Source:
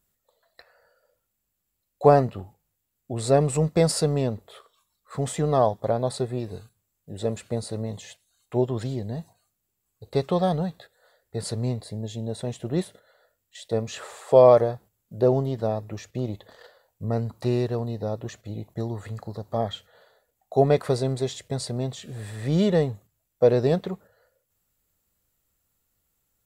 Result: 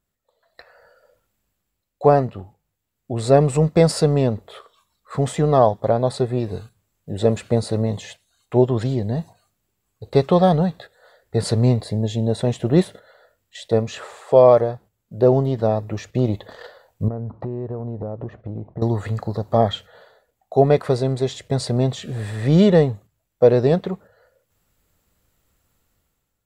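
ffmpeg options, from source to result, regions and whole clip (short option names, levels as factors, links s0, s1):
-filter_complex "[0:a]asettb=1/sr,asplit=3[s0][s1][s2];[s0]atrim=end=17.084[s3];[s1]atrim=start=17.08:end=18.82,asetpts=PTS-STARTPTS,afade=t=in:d=0.004:c=qsin,afade=t=out:st=1.736:d=0.004:c=qsin,lowpass=1000,acompressor=threshold=0.0158:ratio=6:attack=3.2:release=140:knee=1:detection=peak[s4];[s2]atrim=start=18.816[s5];[s3][s4]acrossfade=d=0.004:c1=hsin:c2=qsin[s6];[s6][s5]acrossfade=d=0.004:c1=qsin:c2=hsin,highshelf=f=6000:g=-10,dynaudnorm=f=170:g=7:m=3.98,volume=0.891"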